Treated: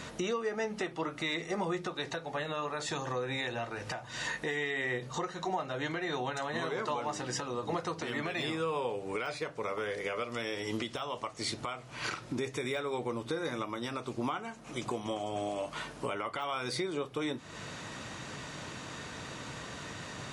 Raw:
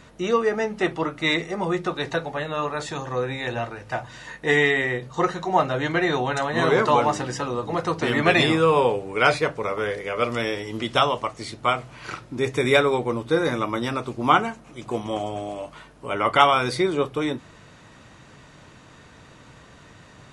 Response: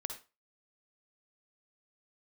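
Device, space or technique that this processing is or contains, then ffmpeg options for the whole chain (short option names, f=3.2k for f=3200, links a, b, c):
broadcast voice chain: -af "highpass=f=110:p=1,deesser=0.6,acompressor=threshold=-38dB:ratio=4,equalizer=f=5.9k:t=o:w=2:g=4,alimiter=level_in=5dB:limit=-24dB:level=0:latency=1:release=296,volume=-5dB,volume=5.5dB"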